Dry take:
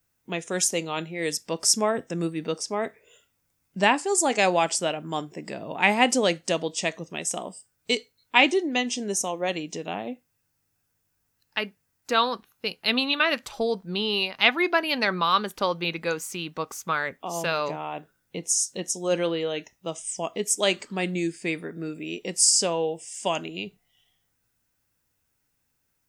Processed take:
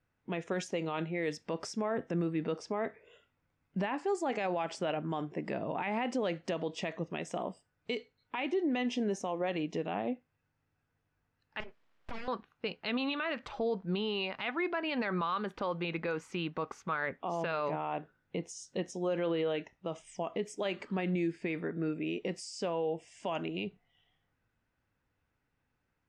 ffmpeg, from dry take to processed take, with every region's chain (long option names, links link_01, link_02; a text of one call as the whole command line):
ffmpeg -i in.wav -filter_complex "[0:a]asettb=1/sr,asplit=3[link_01][link_02][link_03];[link_01]atrim=end=11.604[link_04];[link_02]atrim=start=11.6:end=12.28,asetpts=PTS-STARTPTS,afade=type=in:duration=0.004:curve=qsin,afade=type=out:start_time=0.676:duration=0.004:curve=qsin,highshelf=frequency=8000:gain=8.5,acompressor=threshold=-33dB:ratio=16:attack=3.2:release=140:knee=1:detection=peak,aeval=exprs='abs(val(0))':channel_layout=same[link_05];[link_03]atrim=start=12.276[link_06];[link_04][link_05]acrossfade=duration=0.004:curve1=hsin:curve2=qsin[link_07];[link_07][link_06]acrossfade=duration=0.004:curve1=qsin:curve2=hsin,acompressor=threshold=-23dB:ratio=6,lowpass=2300,alimiter=level_in=0.5dB:limit=-24dB:level=0:latency=1:release=33,volume=-0.5dB" out.wav